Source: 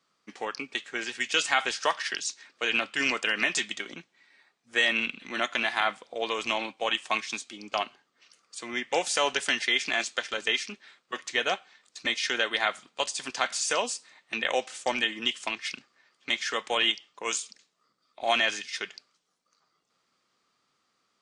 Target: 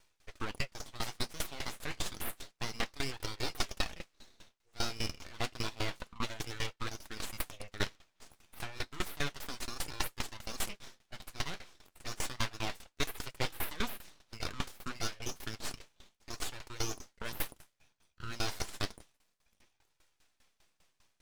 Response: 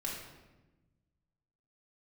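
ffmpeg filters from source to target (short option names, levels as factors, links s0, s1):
-af "aeval=exprs='abs(val(0))':c=same,areverse,acompressor=threshold=0.0158:ratio=6,areverse,flanger=delay=2.1:depth=9.7:regen=-47:speed=0.3:shape=sinusoidal,aeval=exprs='val(0)*pow(10,-20*if(lt(mod(5*n/s,1),2*abs(5)/1000),1-mod(5*n/s,1)/(2*abs(5)/1000),(mod(5*n/s,1)-2*abs(5)/1000)/(1-2*abs(5)/1000))/20)':c=same,volume=5.01"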